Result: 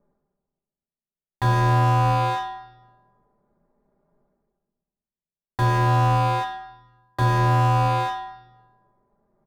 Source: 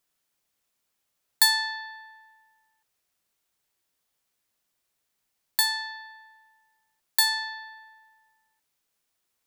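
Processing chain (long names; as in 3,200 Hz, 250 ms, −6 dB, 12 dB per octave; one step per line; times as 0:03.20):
downward expander −51 dBFS
reversed playback
upward compression, threshold −46 dBFS
reversed playback
moving average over 15 samples
ring modulation 120 Hz
leveller curve on the samples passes 3
comb filter 5 ms, depth 75%
low-pass that shuts in the quiet parts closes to 550 Hz, open at −46 dBFS
on a send at −6 dB: convolution reverb RT60 1.1 s, pre-delay 3 ms
on the sum: boost into a limiter +29.5 dB
slew-rate limiting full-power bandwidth 96 Hz
level −1.5 dB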